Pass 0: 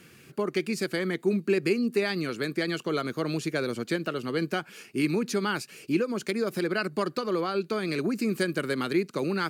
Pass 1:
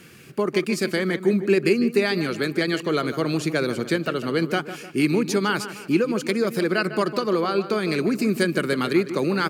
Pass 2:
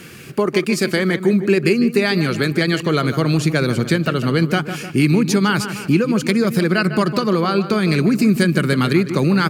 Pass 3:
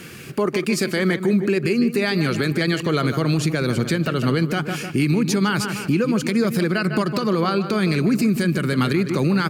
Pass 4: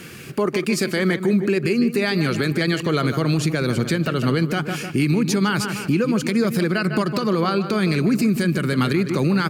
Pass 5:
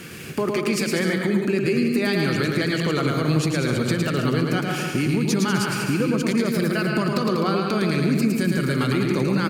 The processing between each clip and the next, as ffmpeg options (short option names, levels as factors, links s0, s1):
-filter_complex "[0:a]asplit=2[s0][s1];[s1]adelay=152,lowpass=f=2800:p=1,volume=0.266,asplit=2[s2][s3];[s3]adelay=152,lowpass=f=2800:p=1,volume=0.46,asplit=2[s4][s5];[s5]adelay=152,lowpass=f=2800:p=1,volume=0.46,asplit=2[s6][s7];[s7]adelay=152,lowpass=f=2800:p=1,volume=0.46,asplit=2[s8][s9];[s9]adelay=152,lowpass=f=2800:p=1,volume=0.46[s10];[s0][s2][s4][s6][s8][s10]amix=inputs=6:normalize=0,volume=1.88"
-af "asubboost=boost=4.5:cutoff=170,acompressor=threshold=0.0398:ratio=1.5,volume=2.82"
-af "alimiter=limit=0.282:level=0:latency=1:release=80"
-af anull
-filter_complex "[0:a]acompressor=threshold=0.0891:ratio=2.5,asplit=2[s0][s1];[s1]aecho=0:1:110|192.5|254.4|300.8|335.6:0.631|0.398|0.251|0.158|0.1[s2];[s0][s2]amix=inputs=2:normalize=0"